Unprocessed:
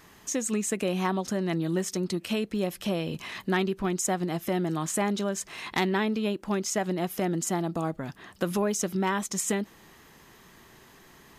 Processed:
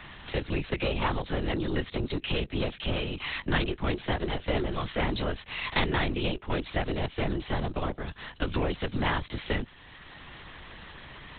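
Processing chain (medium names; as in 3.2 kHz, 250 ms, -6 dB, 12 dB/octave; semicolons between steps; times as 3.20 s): 3.72–4.77 s: doubling 14 ms -4.5 dB; Chebyshev shaper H 3 -20 dB, 4 -33 dB, 8 -35 dB, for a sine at -15 dBFS; treble shelf 2.1 kHz +12 dB; LPC vocoder at 8 kHz whisper; three bands compressed up and down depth 40%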